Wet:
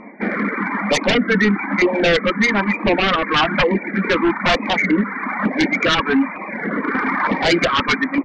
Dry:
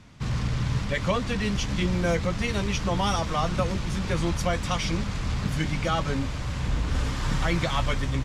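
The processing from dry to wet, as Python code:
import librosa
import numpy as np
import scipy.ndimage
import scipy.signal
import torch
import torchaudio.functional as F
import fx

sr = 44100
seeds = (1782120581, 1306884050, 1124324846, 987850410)

y = fx.brickwall_bandpass(x, sr, low_hz=190.0, high_hz=2400.0)
y = fx.low_shelf(y, sr, hz=360.0, db=-5.0)
y = fx.hum_notches(y, sr, base_hz=60, count=4)
y = fx.dereverb_blind(y, sr, rt60_s=1.7)
y = fx.fold_sine(y, sr, drive_db=11, ceiling_db=-17.0)
y = fx.air_absorb(y, sr, metres=69.0)
y = fx.filter_lfo_notch(y, sr, shape='saw_down', hz=1.1, low_hz=380.0, high_hz=1600.0, q=1.2)
y = fx.record_warp(y, sr, rpm=33.33, depth_cents=100.0)
y = y * librosa.db_to_amplitude(8.0)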